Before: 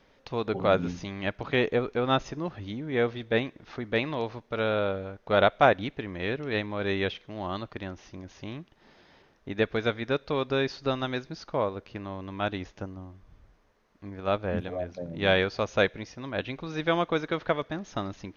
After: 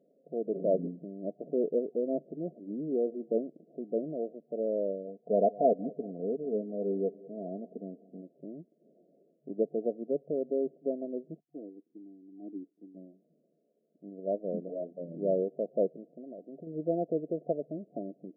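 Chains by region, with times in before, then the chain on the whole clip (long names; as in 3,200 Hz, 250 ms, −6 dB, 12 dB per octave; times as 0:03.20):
0:02.52–0:03.34: downward compressor 3 to 1, threshold −26 dBFS + dynamic equaliser 350 Hz, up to +5 dB, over −43 dBFS, Q 0.93
0:05.07–0:08.22: comb filter 4.4 ms, depth 63% + repeating echo 197 ms, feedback 54%, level −21 dB
0:11.40–0:12.95: formant resonators in series u + notch comb filter 570 Hz + multiband upward and downward expander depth 100%
0:15.96–0:16.67: parametric band 820 Hz +14.5 dB 0.33 octaves + downward compressor 16 to 1, threshold −34 dBFS
whole clip: brick-wall band-pass 140–720 Hz; parametric band 400 Hz +7 dB 2.1 octaves; level −9 dB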